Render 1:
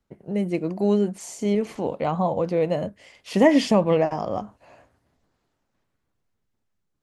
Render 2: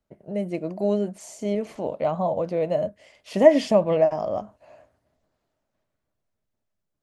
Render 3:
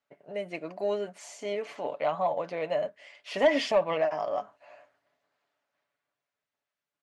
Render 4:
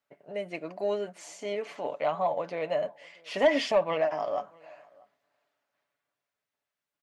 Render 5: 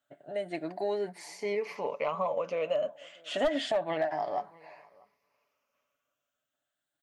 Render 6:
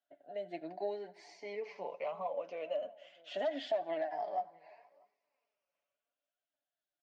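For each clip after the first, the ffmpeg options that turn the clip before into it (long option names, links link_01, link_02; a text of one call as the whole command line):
ffmpeg -i in.wav -af "equalizer=frequency=620:width=5.6:gain=11.5,volume=-4.5dB" out.wav
ffmpeg -i in.wav -af "bandpass=frequency=2000:width_type=q:width=0.78:csg=0,aecho=1:1:7:0.44,asoftclip=type=tanh:threshold=-18dB,volume=4dB" out.wav
ffmpeg -i in.wav -filter_complex "[0:a]asplit=2[link_01][link_02];[link_02]adelay=641.4,volume=-26dB,highshelf=frequency=4000:gain=-14.4[link_03];[link_01][link_03]amix=inputs=2:normalize=0" out.wav
ffmpeg -i in.wav -af "afftfilt=real='re*pow(10,11/40*sin(2*PI*(0.84*log(max(b,1)*sr/1024/100)/log(2)-(0.3)*(pts-256)/sr)))':imag='im*pow(10,11/40*sin(2*PI*(0.84*log(max(b,1)*sr/1024/100)/log(2)-(0.3)*(pts-256)/sr)))':win_size=1024:overlap=0.75,aeval=exprs='clip(val(0),-1,0.15)':channel_layout=same,acompressor=threshold=-28dB:ratio=2.5" out.wav
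ffmpeg -i in.wav -af "flanger=delay=2.5:depth=3.5:regen=38:speed=0.78:shape=triangular,highpass=frequency=180:width=0.5412,highpass=frequency=180:width=1.3066,equalizer=frequency=230:width_type=q:width=4:gain=-5,equalizer=frequency=700:width_type=q:width=4:gain=6,equalizer=frequency=1200:width_type=q:width=4:gain=-7,lowpass=frequency=5700:width=0.5412,lowpass=frequency=5700:width=1.3066,aecho=1:1:85|170|255|340:0.0668|0.0374|0.021|0.0117,volume=-5.5dB" out.wav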